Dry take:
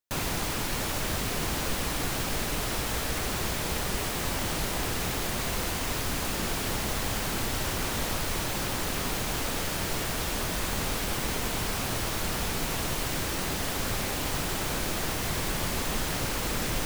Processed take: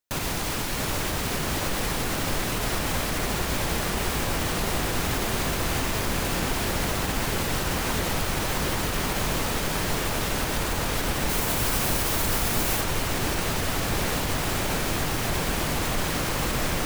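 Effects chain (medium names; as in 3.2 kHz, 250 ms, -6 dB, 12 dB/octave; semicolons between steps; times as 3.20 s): peak limiter -21 dBFS, peak gain reduction 5 dB; 11.29–12.81 s: treble shelf 8.1 kHz +8.5 dB; feedback echo behind a low-pass 666 ms, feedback 81%, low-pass 2.6 kHz, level -5 dB; trim +3 dB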